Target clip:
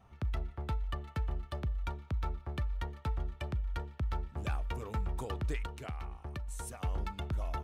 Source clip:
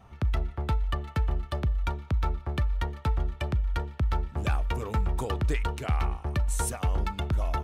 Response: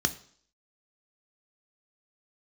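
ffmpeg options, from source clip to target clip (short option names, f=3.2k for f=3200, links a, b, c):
-filter_complex "[0:a]asettb=1/sr,asplit=3[a][b][c];[a]atrim=end=5.654[d];[b]atrim=start=5.65:end=6.79,asetpts=PTS-STARTPTS,afade=t=in:d=0.004:c=qsin,afade=t=out:st=1.136:d=0.004:c=qsin,acompressor=threshold=-31dB:ratio=3[e];[c]atrim=start=6.786[f];[d][e]acrossfade=d=0.004:c1=hsin:c2=qsin[g];[g][f]acrossfade=d=0.004:c1=qsin:c2=hsin,volume=-8dB"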